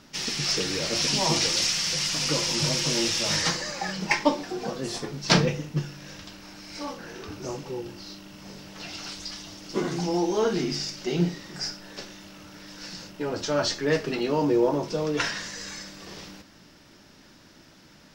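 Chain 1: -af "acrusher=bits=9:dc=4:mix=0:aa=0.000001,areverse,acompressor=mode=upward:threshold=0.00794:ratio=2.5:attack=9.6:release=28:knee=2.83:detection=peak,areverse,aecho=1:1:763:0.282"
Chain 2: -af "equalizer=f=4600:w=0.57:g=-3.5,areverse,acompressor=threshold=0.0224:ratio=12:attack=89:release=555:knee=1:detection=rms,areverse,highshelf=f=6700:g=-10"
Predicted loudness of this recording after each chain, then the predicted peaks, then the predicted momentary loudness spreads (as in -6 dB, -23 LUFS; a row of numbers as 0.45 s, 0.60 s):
-26.0 LUFS, -38.0 LUFS; -4.0 dBFS, -21.0 dBFS; 18 LU, 11 LU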